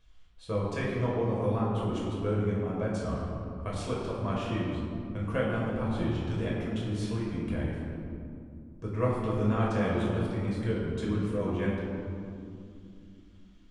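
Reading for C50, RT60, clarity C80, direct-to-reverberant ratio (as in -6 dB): -0.5 dB, 2.5 s, 1.0 dB, -6.0 dB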